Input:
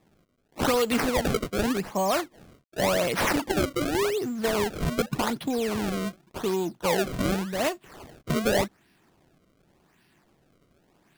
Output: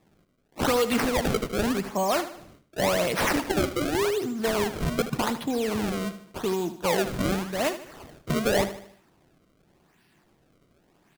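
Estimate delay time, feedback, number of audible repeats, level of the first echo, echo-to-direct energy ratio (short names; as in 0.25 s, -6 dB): 76 ms, 46%, 4, -12.5 dB, -11.5 dB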